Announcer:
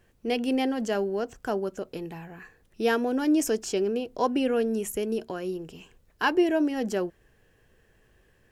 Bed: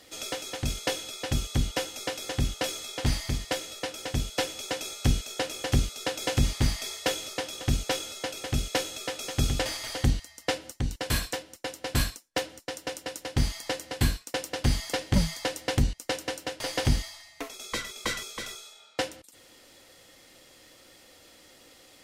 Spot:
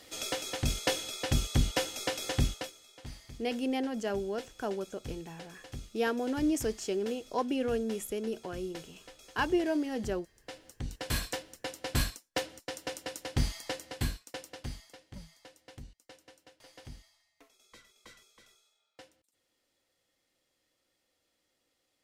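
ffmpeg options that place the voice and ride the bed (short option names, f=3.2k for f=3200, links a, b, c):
-filter_complex "[0:a]adelay=3150,volume=-6dB[a];[1:a]volume=15dB,afade=t=out:st=2.41:d=0.3:silence=0.11885,afade=t=in:st=10.47:d=0.81:silence=0.16788,afade=t=out:st=13.35:d=1.6:silence=0.0944061[b];[a][b]amix=inputs=2:normalize=0"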